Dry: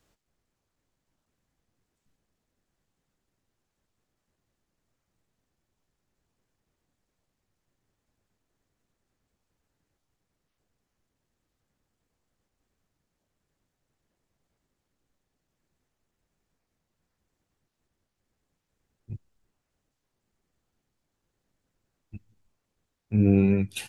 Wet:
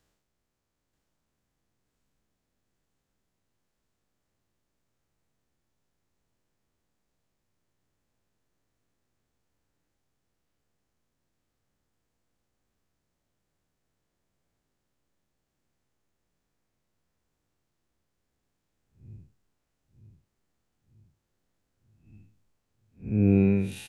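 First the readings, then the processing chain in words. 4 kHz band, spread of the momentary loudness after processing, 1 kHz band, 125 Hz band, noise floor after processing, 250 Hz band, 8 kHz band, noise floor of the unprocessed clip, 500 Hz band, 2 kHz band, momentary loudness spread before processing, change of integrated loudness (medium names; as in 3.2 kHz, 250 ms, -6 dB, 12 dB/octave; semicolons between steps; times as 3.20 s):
-7.0 dB, 6 LU, -2.0 dB, -1.0 dB, -81 dBFS, -1.0 dB, -6.5 dB, -82 dBFS, -1.0 dB, -3.0 dB, 6 LU, -1.0 dB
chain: spectral blur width 173 ms; feedback delay 934 ms, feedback 53%, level -8 dB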